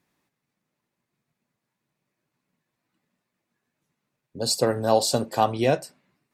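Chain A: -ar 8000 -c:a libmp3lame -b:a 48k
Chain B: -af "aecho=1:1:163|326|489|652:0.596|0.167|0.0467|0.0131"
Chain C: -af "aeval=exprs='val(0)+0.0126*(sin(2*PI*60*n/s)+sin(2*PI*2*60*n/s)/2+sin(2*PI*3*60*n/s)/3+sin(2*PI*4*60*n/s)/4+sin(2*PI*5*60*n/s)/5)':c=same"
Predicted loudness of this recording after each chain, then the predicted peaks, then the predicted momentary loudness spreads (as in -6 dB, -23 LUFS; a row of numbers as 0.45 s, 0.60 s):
-25.0 LUFS, -22.5 LUFS, -23.5 LUFS; -6.0 dBFS, -5.5 dBFS, -5.5 dBFS; 9 LU, 9 LU, 20 LU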